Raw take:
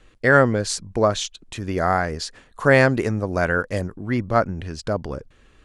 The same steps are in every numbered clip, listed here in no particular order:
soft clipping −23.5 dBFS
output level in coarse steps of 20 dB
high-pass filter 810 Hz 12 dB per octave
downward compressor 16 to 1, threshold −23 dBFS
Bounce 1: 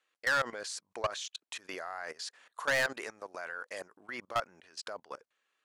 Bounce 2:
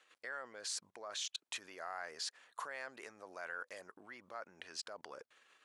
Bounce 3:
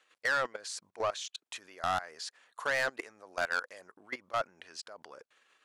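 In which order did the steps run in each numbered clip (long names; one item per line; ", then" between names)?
high-pass filter, then output level in coarse steps, then soft clipping, then downward compressor
downward compressor, then output level in coarse steps, then high-pass filter, then soft clipping
output level in coarse steps, then high-pass filter, then soft clipping, then downward compressor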